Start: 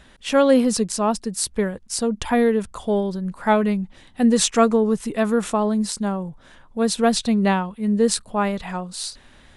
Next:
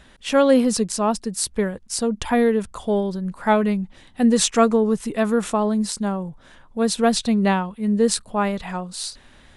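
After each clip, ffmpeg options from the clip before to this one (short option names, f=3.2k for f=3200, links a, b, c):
-af anull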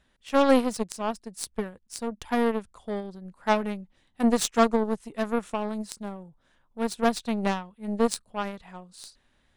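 -af "aeval=exprs='0.75*(cos(1*acos(clip(val(0)/0.75,-1,1)))-cos(1*PI/2))+0.0335*(cos(4*acos(clip(val(0)/0.75,-1,1)))-cos(4*PI/2))+0.0841*(cos(7*acos(clip(val(0)/0.75,-1,1)))-cos(7*PI/2))':c=same,volume=-4dB"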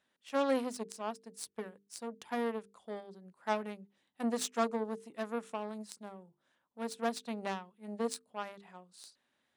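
-af "asoftclip=type=tanh:threshold=-9.5dB,highpass=210,bandreject=f=50:t=h:w=6,bandreject=f=100:t=h:w=6,bandreject=f=150:t=h:w=6,bandreject=f=200:t=h:w=6,bandreject=f=250:t=h:w=6,bandreject=f=300:t=h:w=6,bandreject=f=350:t=h:w=6,bandreject=f=400:t=h:w=6,bandreject=f=450:t=h:w=6,volume=-8.5dB"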